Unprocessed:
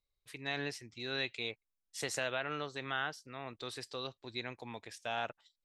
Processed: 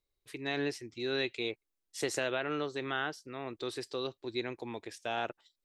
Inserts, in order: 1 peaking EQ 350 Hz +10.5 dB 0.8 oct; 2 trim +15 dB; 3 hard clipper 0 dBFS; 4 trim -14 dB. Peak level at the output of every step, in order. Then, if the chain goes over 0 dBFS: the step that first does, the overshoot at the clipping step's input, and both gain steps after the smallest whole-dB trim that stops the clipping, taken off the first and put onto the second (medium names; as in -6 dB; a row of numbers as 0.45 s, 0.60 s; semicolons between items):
-19.5 dBFS, -4.5 dBFS, -4.5 dBFS, -18.5 dBFS; nothing clips